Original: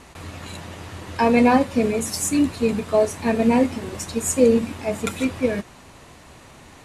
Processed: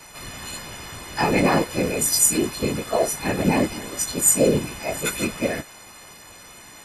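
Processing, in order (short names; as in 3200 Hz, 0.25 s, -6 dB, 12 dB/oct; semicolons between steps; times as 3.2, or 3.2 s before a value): frequency quantiser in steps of 3 st; whisperiser; gain -3 dB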